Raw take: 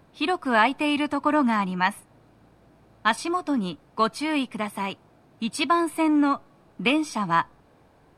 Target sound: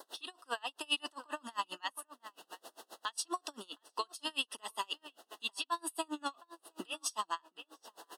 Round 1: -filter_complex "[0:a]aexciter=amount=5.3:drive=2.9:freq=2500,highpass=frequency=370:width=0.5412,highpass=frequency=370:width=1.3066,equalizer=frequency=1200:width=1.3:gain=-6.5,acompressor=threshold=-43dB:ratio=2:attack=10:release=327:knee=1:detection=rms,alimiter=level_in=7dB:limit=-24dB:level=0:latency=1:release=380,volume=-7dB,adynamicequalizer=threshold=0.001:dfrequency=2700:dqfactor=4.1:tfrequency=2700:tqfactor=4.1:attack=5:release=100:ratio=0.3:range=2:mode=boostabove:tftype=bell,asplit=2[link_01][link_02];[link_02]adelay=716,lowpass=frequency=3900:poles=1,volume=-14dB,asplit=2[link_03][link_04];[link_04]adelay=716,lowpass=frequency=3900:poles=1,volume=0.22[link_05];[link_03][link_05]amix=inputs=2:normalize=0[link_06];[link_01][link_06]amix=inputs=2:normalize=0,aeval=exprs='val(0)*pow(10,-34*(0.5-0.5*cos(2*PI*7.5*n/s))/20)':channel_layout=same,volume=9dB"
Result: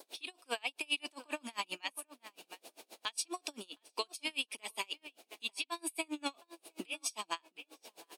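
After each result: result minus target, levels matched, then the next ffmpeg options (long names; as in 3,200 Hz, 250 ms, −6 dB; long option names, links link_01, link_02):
1,000 Hz band −4.5 dB; 2,000 Hz band +2.5 dB
-filter_complex "[0:a]aexciter=amount=5.3:drive=2.9:freq=2500,highpass=frequency=370:width=0.5412,highpass=frequency=370:width=1.3066,equalizer=frequency=1200:width=1.3:gain=4.5,acompressor=threshold=-43dB:ratio=2:attack=10:release=327:knee=1:detection=rms,alimiter=level_in=7dB:limit=-24dB:level=0:latency=1:release=380,volume=-7dB,adynamicequalizer=threshold=0.001:dfrequency=2700:dqfactor=4.1:tfrequency=2700:tqfactor=4.1:attack=5:release=100:ratio=0.3:range=2:mode=boostabove:tftype=bell,asplit=2[link_01][link_02];[link_02]adelay=716,lowpass=frequency=3900:poles=1,volume=-14dB,asplit=2[link_03][link_04];[link_04]adelay=716,lowpass=frequency=3900:poles=1,volume=0.22[link_05];[link_03][link_05]amix=inputs=2:normalize=0[link_06];[link_01][link_06]amix=inputs=2:normalize=0,aeval=exprs='val(0)*pow(10,-34*(0.5-0.5*cos(2*PI*7.5*n/s))/20)':channel_layout=same,volume=9dB"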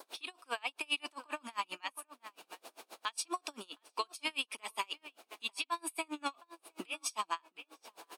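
2,000 Hz band +2.5 dB
-filter_complex "[0:a]aexciter=amount=5.3:drive=2.9:freq=2500,highpass=frequency=370:width=0.5412,highpass=frequency=370:width=1.3066,equalizer=frequency=1200:width=1.3:gain=4.5,acompressor=threshold=-43dB:ratio=2:attack=10:release=327:knee=1:detection=rms,asuperstop=centerf=2300:order=8:qfactor=3.6,alimiter=level_in=7dB:limit=-24dB:level=0:latency=1:release=380,volume=-7dB,adynamicequalizer=threshold=0.001:dfrequency=2700:dqfactor=4.1:tfrequency=2700:tqfactor=4.1:attack=5:release=100:ratio=0.3:range=2:mode=boostabove:tftype=bell,asplit=2[link_01][link_02];[link_02]adelay=716,lowpass=frequency=3900:poles=1,volume=-14dB,asplit=2[link_03][link_04];[link_04]adelay=716,lowpass=frequency=3900:poles=1,volume=0.22[link_05];[link_03][link_05]amix=inputs=2:normalize=0[link_06];[link_01][link_06]amix=inputs=2:normalize=0,aeval=exprs='val(0)*pow(10,-34*(0.5-0.5*cos(2*PI*7.5*n/s))/20)':channel_layout=same,volume=9dB"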